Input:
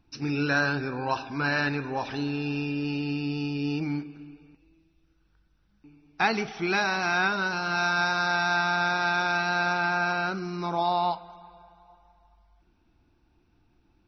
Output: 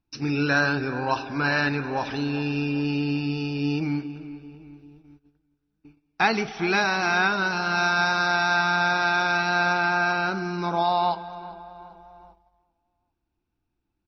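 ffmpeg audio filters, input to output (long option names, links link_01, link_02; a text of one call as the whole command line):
ffmpeg -i in.wav -filter_complex "[0:a]asplit=2[link_01][link_02];[link_02]adelay=395,lowpass=frequency=2500:poles=1,volume=-15.5dB,asplit=2[link_03][link_04];[link_04]adelay=395,lowpass=frequency=2500:poles=1,volume=0.55,asplit=2[link_05][link_06];[link_06]adelay=395,lowpass=frequency=2500:poles=1,volume=0.55,asplit=2[link_07][link_08];[link_08]adelay=395,lowpass=frequency=2500:poles=1,volume=0.55,asplit=2[link_09][link_10];[link_10]adelay=395,lowpass=frequency=2500:poles=1,volume=0.55[link_11];[link_01][link_03][link_05][link_07][link_09][link_11]amix=inputs=6:normalize=0,agate=range=-17dB:threshold=-53dB:ratio=16:detection=peak,volume=3dB" out.wav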